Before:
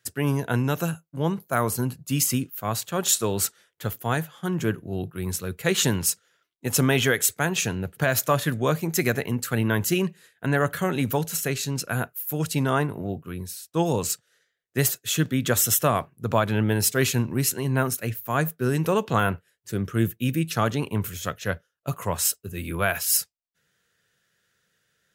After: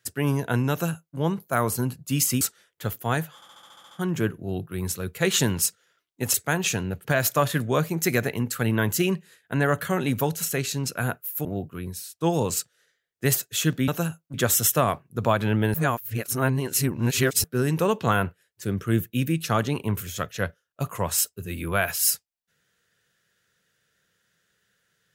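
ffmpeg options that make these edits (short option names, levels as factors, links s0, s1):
-filter_complex "[0:a]asplit=16[s0][s1][s2][s3][s4][s5][s6][s7][s8][s9][s10][s11][s12][s13][s14][s15];[s0]atrim=end=2.412[s16];[s1]atrim=start=3.408:end=4.422[s17];[s2]atrim=start=4.348:end=4.422[s18];[s3]atrim=start=4.348:end=4.422[s19];[s4]atrim=start=4.348:end=4.422[s20];[s5]atrim=start=4.348:end=4.422[s21];[s6]atrim=start=4.348:end=4.422[s22];[s7]atrim=start=4.348:end=4.422[s23];[s8]atrim=start=4.348:end=4.422[s24];[s9]atrim=start=4.348:end=6.782[s25];[s10]atrim=start=7.258:end=12.372[s26];[s11]atrim=start=12.978:end=15.412[s27];[s12]atrim=start=0.708:end=1.172[s28];[s13]atrim=start=15.408:end=16.812[s29];[s14]atrim=start=16.808:end=18.512,asetpts=PTS-STARTPTS,areverse[s30];[s15]atrim=start=18.508[s31];[s16][s17]acrossfade=d=0.004:c1=hsin:c2=hsin[s32];[s32][s18]acrossfade=d=0.004:c1=hsin:c2=hsin[s33];[s33][s19]acrossfade=d=0.004:c1=hsin:c2=hsin[s34];[s34][s20]acrossfade=d=0.004:c1=hsin:c2=hsin[s35];[s35][s21]acrossfade=d=0.004:c1=hsin:c2=hsin[s36];[s36][s22]acrossfade=d=0.004:c1=hsin:c2=hsin[s37];[s37][s23]acrossfade=d=0.004:c1=hsin:c2=hsin[s38];[s38][s24]acrossfade=d=0.004:c1=hsin:c2=hsin[s39];[s39][s25]acrossfade=d=0.004:c1=hsin:c2=hsin[s40];[s40][s26]acrossfade=d=0.004:c1=hsin:c2=hsin[s41];[s41][s27]acrossfade=d=0.004:c1=hsin:c2=hsin[s42];[s42][s28]acrossfade=d=0.004:c1=hsin:c2=hsin[s43];[s43][s29]acrossfade=d=0.004:c1=hsin:c2=hsin[s44];[s44][s30]acrossfade=d=0.004:c1=hsin:c2=hsin[s45];[s45][s31]acrossfade=d=0.004:c1=hsin:c2=hsin"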